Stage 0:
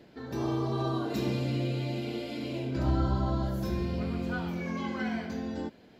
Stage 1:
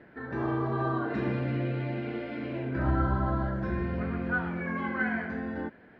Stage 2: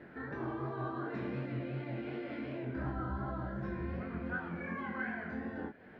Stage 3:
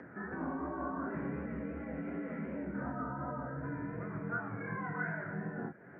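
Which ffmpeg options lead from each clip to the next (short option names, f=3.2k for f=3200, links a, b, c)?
-af "lowpass=f=1.7k:t=q:w=3.4"
-af "acompressor=threshold=-44dB:ratio=2,flanger=delay=19.5:depth=7.2:speed=2.7,volume=4dB"
-af "highpass=f=180:t=q:w=0.5412,highpass=f=180:t=q:w=1.307,lowpass=f=2.1k:t=q:w=0.5176,lowpass=f=2.1k:t=q:w=0.7071,lowpass=f=2.1k:t=q:w=1.932,afreqshift=-61,acompressor=mode=upward:threshold=-50dB:ratio=2.5,volume=1.5dB"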